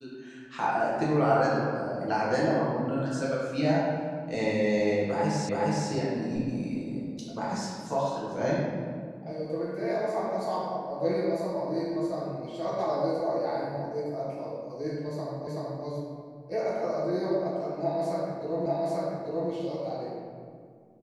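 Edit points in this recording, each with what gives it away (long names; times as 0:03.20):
0:05.49: the same again, the last 0.42 s
0:15.47: the same again, the last 0.38 s
0:18.66: the same again, the last 0.84 s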